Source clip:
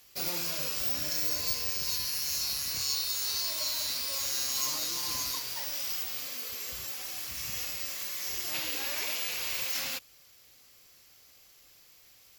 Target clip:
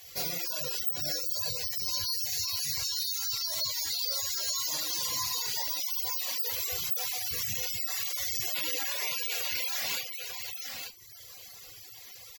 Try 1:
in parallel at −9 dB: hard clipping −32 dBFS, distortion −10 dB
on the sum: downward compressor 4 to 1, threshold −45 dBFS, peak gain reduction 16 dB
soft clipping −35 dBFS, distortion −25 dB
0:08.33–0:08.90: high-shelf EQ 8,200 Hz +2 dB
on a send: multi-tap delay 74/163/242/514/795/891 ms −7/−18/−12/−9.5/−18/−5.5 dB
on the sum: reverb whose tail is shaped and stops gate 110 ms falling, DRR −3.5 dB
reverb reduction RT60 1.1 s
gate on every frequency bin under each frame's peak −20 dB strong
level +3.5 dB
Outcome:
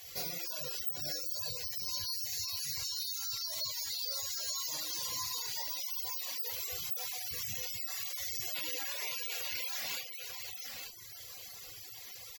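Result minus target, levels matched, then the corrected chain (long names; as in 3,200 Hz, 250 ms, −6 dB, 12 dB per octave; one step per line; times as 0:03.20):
hard clipping: distortion +15 dB; downward compressor: peak gain reduction +7.5 dB
in parallel at −9 dB: hard clipping −24 dBFS, distortion −25 dB
on the sum: downward compressor 4 to 1, threshold −33.5 dBFS, peak gain reduction 8.5 dB
soft clipping −35 dBFS, distortion −12 dB
0:08.33–0:08.90: high-shelf EQ 8,200 Hz +2 dB
on a send: multi-tap delay 74/163/242/514/795/891 ms −7/−18/−12/−9.5/−18/−5.5 dB
on the sum: reverb whose tail is shaped and stops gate 110 ms falling, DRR −3.5 dB
reverb reduction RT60 1.1 s
gate on every frequency bin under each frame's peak −20 dB strong
level +3.5 dB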